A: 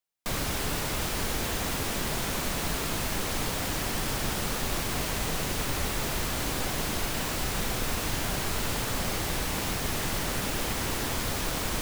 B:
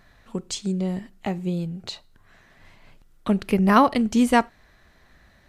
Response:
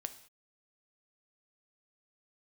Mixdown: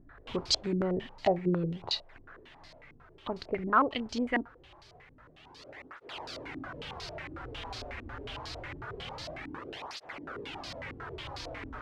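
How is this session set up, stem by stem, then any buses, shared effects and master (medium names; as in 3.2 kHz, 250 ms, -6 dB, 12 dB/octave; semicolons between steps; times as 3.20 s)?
-9.5 dB, 0.00 s, no send, cancelling through-zero flanger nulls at 0.25 Hz, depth 6.7 ms; auto duck -15 dB, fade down 1.25 s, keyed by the second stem
2.20 s 0 dB -> 2.93 s -10.5 dB, 0.00 s, no send, none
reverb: none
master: peaking EQ 200 Hz -13 dB 0.32 oct; saturation -22 dBFS, distortion -16 dB; step-sequenced low-pass 11 Hz 290–4600 Hz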